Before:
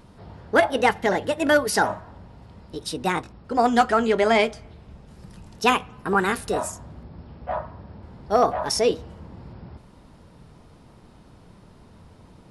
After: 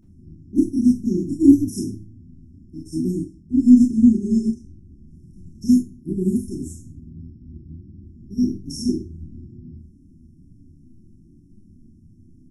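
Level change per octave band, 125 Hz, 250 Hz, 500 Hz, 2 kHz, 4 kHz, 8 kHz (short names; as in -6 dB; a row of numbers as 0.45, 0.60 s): +6.0 dB, +12.0 dB, -11.5 dB, under -40 dB, under -10 dB, -5.5 dB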